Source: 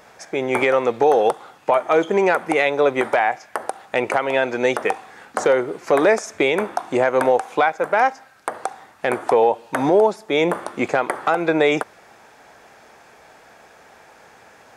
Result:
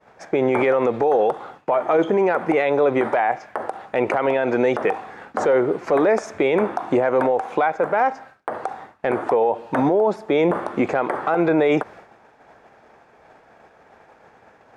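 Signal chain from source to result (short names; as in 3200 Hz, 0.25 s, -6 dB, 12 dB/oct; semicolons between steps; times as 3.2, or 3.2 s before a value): LPF 1200 Hz 6 dB/oct; expander -43 dBFS; limiter -17.5 dBFS, peak gain reduction 11 dB; gain +7.5 dB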